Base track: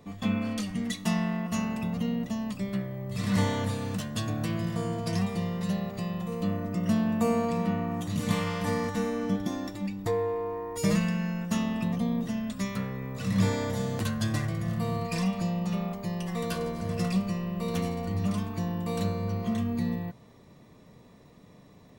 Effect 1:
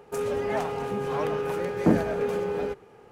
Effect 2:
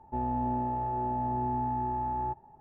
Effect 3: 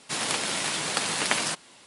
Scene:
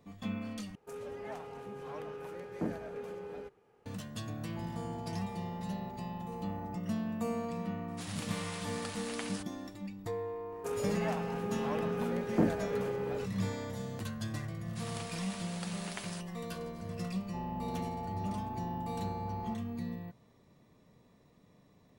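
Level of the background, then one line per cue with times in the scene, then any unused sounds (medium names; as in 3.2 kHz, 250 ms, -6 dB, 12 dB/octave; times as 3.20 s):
base track -9.5 dB
0.75 s: replace with 1 -15 dB
4.44 s: add 2 -11 dB + peak limiter -28.5 dBFS
7.88 s: add 3 -17 dB
10.52 s: add 1 -7.5 dB
14.66 s: add 3 -18 dB
17.21 s: add 2 -10 dB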